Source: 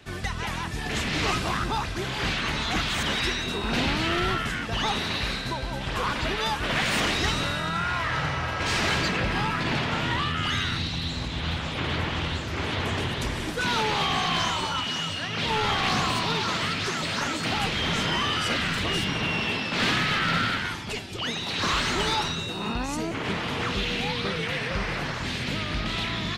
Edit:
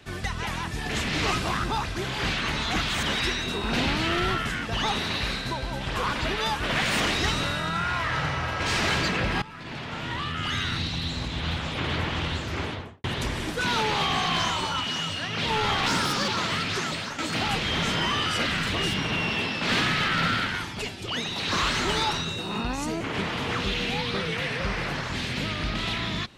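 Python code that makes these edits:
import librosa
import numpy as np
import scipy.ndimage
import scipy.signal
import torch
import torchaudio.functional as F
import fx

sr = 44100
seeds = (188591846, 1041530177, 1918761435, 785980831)

y = fx.studio_fade_out(x, sr, start_s=12.54, length_s=0.5)
y = fx.edit(y, sr, fx.fade_in_from(start_s=9.42, length_s=1.4, floor_db=-19.0),
    fx.speed_span(start_s=15.86, length_s=0.53, speed=1.25),
    fx.fade_out_to(start_s=16.97, length_s=0.32, floor_db=-11.0), tone=tone)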